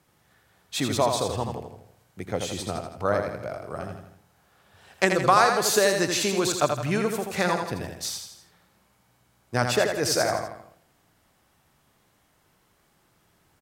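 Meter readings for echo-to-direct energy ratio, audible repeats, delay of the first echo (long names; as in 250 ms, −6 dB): −4.5 dB, 4, 82 ms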